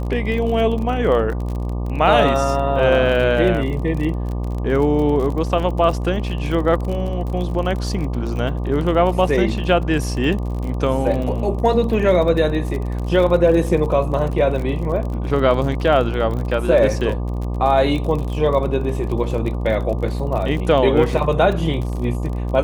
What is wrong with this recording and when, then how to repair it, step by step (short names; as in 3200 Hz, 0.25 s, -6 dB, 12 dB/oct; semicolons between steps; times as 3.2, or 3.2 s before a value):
buzz 60 Hz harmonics 20 -23 dBFS
crackle 39/s -26 dBFS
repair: de-click; de-hum 60 Hz, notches 20